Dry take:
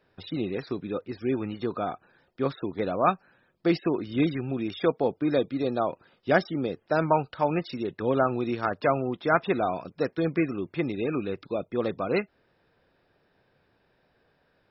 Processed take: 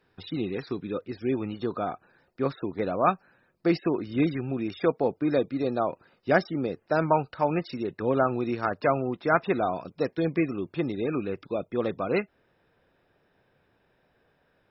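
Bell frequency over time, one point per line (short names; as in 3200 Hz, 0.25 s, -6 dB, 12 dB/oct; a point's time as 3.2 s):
bell -11.5 dB 0.2 oct
0.79 s 590 Hz
1.89 s 3300 Hz
9.49 s 3300 Hz
10.2 s 1200 Hz
11.52 s 4500 Hz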